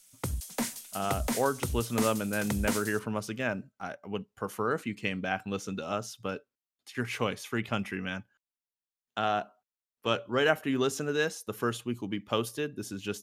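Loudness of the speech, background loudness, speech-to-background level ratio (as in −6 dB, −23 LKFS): −32.5 LKFS, −35.0 LKFS, 2.5 dB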